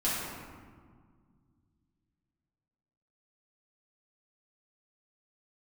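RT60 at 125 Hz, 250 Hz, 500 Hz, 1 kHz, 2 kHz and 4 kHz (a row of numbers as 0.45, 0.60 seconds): 3.2, 2.9, 1.8, 1.7, 1.3, 0.95 seconds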